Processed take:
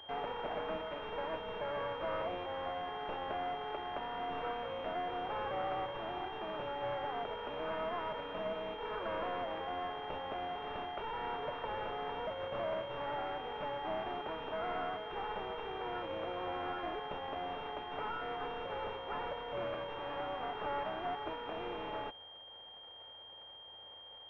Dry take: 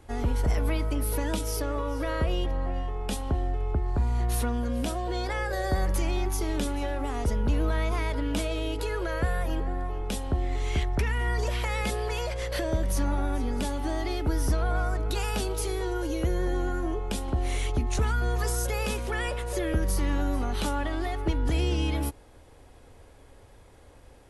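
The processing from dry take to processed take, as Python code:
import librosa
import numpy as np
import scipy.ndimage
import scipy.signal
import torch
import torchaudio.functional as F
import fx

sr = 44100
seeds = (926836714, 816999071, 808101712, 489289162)

y = np.r_[np.sort(x[:len(x) // 16 * 16].reshape(-1, 16), axis=1).ravel(), x[len(x) // 16 * 16:]]
y = scipy.signal.sosfilt(scipy.signal.butter(4, 600.0, 'highpass', fs=sr, output='sos'), y)
y = fx.rider(y, sr, range_db=10, speed_s=2.0)
y = 10.0 ** (-32.0 / 20.0) * np.tanh(y / 10.0 ** (-32.0 / 20.0))
y = fx.pwm(y, sr, carrier_hz=3200.0)
y = F.gain(torch.from_numpy(y), 3.0).numpy()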